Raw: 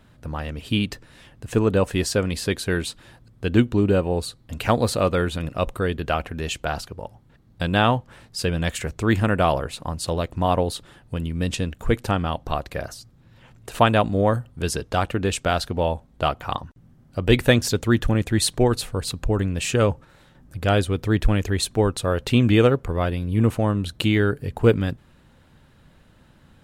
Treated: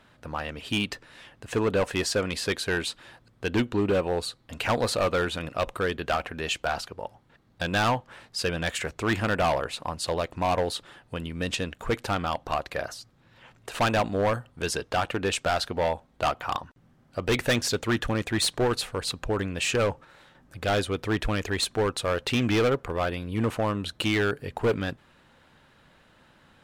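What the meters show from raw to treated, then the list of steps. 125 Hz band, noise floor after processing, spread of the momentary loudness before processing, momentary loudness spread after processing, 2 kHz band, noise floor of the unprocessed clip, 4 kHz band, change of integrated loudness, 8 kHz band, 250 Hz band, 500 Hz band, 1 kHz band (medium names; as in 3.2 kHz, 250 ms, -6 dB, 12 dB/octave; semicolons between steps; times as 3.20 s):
-9.5 dB, -61 dBFS, 12 LU, 10 LU, -1.0 dB, -54 dBFS, -1.5 dB, -5.0 dB, -3.0 dB, -7.0 dB, -4.0 dB, -3.0 dB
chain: overdrive pedal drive 14 dB, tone 4.1 kHz, clips at -1.5 dBFS; hard clipper -13 dBFS, distortion -12 dB; trim -6 dB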